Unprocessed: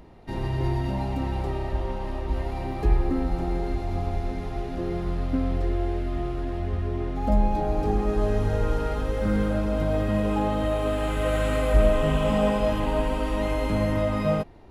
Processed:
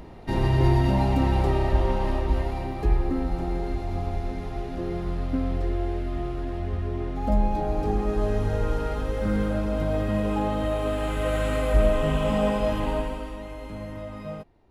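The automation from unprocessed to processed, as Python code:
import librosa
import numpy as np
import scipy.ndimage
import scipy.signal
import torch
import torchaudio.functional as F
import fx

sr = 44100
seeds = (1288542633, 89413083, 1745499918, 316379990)

y = fx.gain(x, sr, db=fx.line((2.1, 6.0), (2.74, -1.0), (12.91, -1.0), (13.44, -12.0)))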